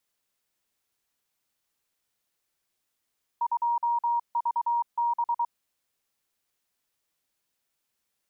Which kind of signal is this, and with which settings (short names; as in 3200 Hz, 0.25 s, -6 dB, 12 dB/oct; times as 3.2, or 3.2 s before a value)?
Morse "2VB" 23 wpm 945 Hz -22.5 dBFS